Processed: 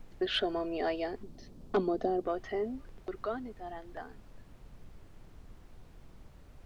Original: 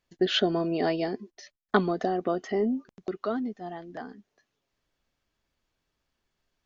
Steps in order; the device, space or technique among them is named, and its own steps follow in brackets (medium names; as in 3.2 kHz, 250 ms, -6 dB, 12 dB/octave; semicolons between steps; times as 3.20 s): aircraft cabin announcement (band-pass 380–3900 Hz; saturation -15 dBFS, distortion -18 dB; brown noise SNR 12 dB); 1.23–2.27 s: FFT filter 100 Hz 0 dB, 230 Hz +10 dB, 1.9 kHz -10 dB, 4.3 kHz -1 dB; trim -3.5 dB